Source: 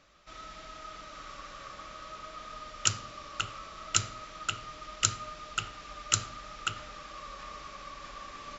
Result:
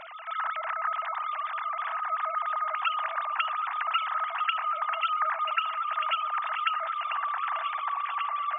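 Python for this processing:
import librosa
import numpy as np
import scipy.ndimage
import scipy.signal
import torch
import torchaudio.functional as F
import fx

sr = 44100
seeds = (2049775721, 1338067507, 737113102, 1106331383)

y = fx.sine_speech(x, sr)
y = fx.echo_alternate(y, sr, ms=767, hz=1400.0, feedback_pct=64, wet_db=-9.0)
y = fx.env_flatten(y, sr, amount_pct=50)
y = y * 10.0 ** (2.5 / 20.0)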